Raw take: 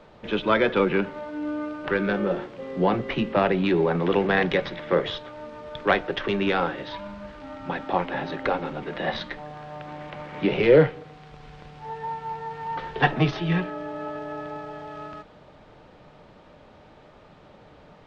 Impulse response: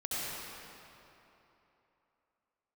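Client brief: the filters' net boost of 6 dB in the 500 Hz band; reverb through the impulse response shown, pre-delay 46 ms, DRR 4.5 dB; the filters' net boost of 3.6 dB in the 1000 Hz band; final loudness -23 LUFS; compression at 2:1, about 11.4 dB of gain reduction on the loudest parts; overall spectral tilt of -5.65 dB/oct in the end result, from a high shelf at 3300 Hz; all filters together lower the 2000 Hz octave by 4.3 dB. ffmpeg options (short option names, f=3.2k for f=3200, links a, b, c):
-filter_complex "[0:a]equalizer=f=500:t=o:g=6.5,equalizer=f=1k:t=o:g=4,equalizer=f=2k:t=o:g=-6.5,highshelf=f=3.3k:g=-3.5,acompressor=threshold=-26dB:ratio=2,asplit=2[a][b];[1:a]atrim=start_sample=2205,adelay=46[c];[b][c]afir=irnorm=-1:irlink=0,volume=-10dB[d];[a][d]amix=inputs=2:normalize=0,volume=4dB"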